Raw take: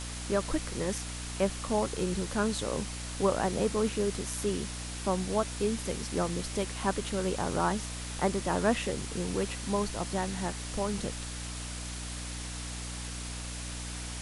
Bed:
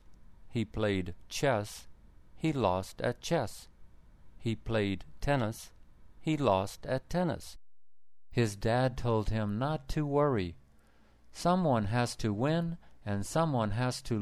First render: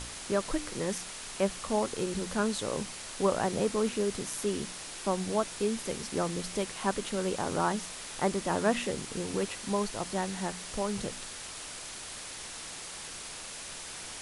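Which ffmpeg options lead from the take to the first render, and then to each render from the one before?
-af "bandreject=f=60:t=h:w=4,bandreject=f=120:t=h:w=4,bandreject=f=180:t=h:w=4,bandreject=f=240:t=h:w=4,bandreject=f=300:t=h:w=4"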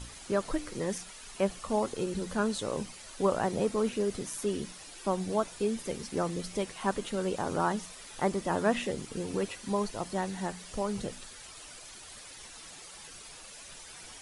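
-af "afftdn=nr=10:nf=-43"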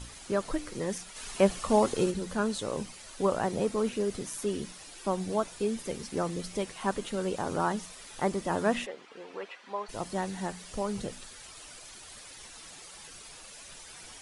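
-filter_complex "[0:a]asplit=3[a][b][c];[a]afade=t=out:st=1.15:d=0.02[d];[b]acontrast=47,afade=t=in:st=1.15:d=0.02,afade=t=out:st=2.1:d=0.02[e];[c]afade=t=in:st=2.1:d=0.02[f];[d][e][f]amix=inputs=3:normalize=0,asplit=3[g][h][i];[g]afade=t=out:st=8.85:d=0.02[j];[h]highpass=650,lowpass=2.6k,afade=t=in:st=8.85:d=0.02,afade=t=out:st=9.88:d=0.02[k];[i]afade=t=in:st=9.88:d=0.02[l];[j][k][l]amix=inputs=3:normalize=0"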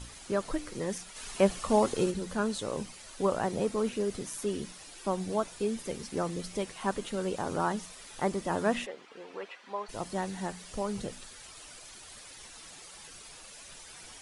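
-af "volume=-1dB"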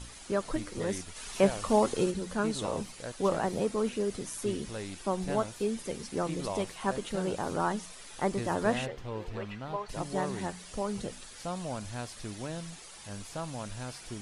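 -filter_complex "[1:a]volume=-9dB[a];[0:a][a]amix=inputs=2:normalize=0"

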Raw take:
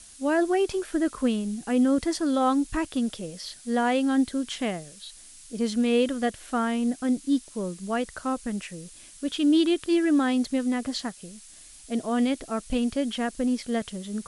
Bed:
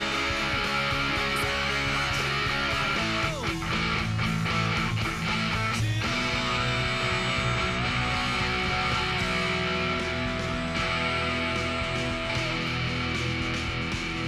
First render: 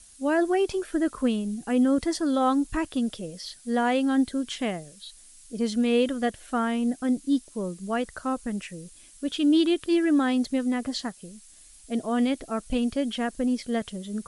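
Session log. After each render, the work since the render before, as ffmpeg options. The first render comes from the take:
-af "afftdn=nr=6:nf=-49"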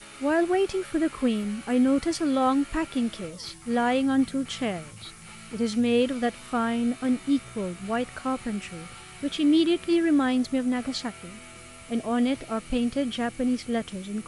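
-filter_complex "[1:a]volume=-18.5dB[a];[0:a][a]amix=inputs=2:normalize=0"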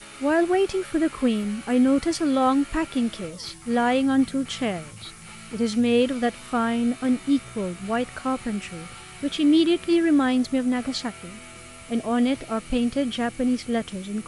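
-af "volume=2.5dB"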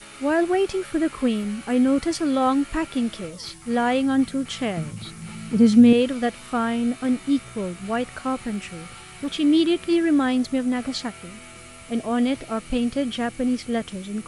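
-filter_complex "[0:a]asettb=1/sr,asplit=3[a][b][c];[a]atrim=end=4.774[d];[b]atrim=start=4.77:end=5.93,asetpts=PTS-STARTPTS,afade=t=in:d=0.004:c=qsin,afade=t=out:st=1.156:d=0.004:c=qsin,equalizer=f=180:t=o:w=1.8:g=12[e];[c]atrim=start=5.926[f];[d][e]acrossfade=d=0.004:c1=hsin:c2=qsin[g];[g][f]acrossfade=d=0.004:c1=qsin:c2=hsin,asettb=1/sr,asplit=3[h][i][j];[h]atrim=end=8.454[k];[i]atrim=start=8.45:end=9.32,asetpts=PTS-STARTPTS,afade=t=in:d=0.004:c=qsin,afade=t=out:st=0.866:d=0.004:c=qsin,asoftclip=type=hard:threshold=-22dB[l];[j]atrim=start=9.316[m];[k][l]acrossfade=d=0.004:c1=hsin:c2=qsin[n];[n][m]acrossfade=d=0.004:c1=qsin:c2=hsin"

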